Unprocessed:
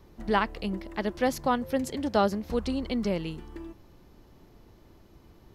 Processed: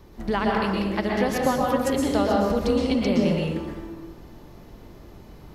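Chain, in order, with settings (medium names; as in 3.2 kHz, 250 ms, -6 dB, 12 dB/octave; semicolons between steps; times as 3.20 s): compression, threshold -27 dBFS, peak gain reduction 9 dB; plate-style reverb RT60 1.2 s, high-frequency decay 0.6×, pre-delay 105 ms, DRR -3 dB; trim +5.5 dB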